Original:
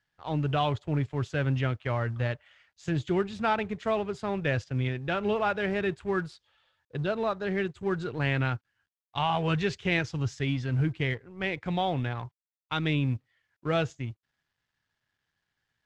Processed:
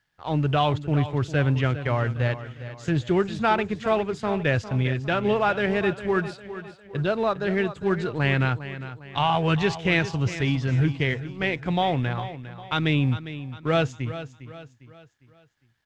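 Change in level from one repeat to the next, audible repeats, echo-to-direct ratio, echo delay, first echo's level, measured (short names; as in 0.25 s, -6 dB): -7.5 dB, 3, -12.0 dB, 0.404 s, -13.0 dB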